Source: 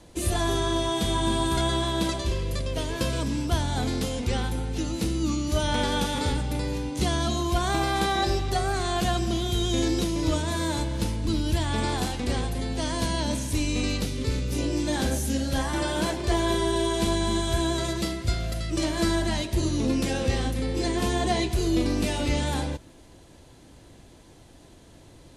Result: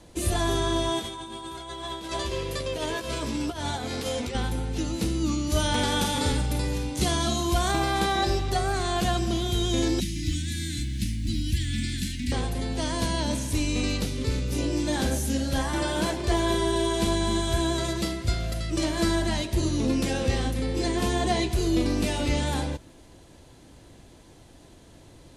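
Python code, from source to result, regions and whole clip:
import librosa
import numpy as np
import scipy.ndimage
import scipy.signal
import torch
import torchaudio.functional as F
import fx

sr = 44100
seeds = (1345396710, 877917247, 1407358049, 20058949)

y = fx.chain(x, sr, fx.bass_treble(bass_db=-9, treble_db=-2),
    fx.over_compress(threshold_db=-32.0, ratio=-0.5),
    fx.doubler(ms=13.0, db=-5.5), at=(0.99, 4.35))
y = fx.chain(y, sr, fx.high_shelf(hz=5600.0, db=6.0),
    fx.doubler(ms=50.0, db=-9.0), at=(5.5, 7.72))
y = fx.chain(y, sr, fx.ellip_bandstop(low_hz=270.0, high_hz=1900.0, order=3, stop_db=40),
    fx.quant_companded(bits=8), at=(10.0, 12.32))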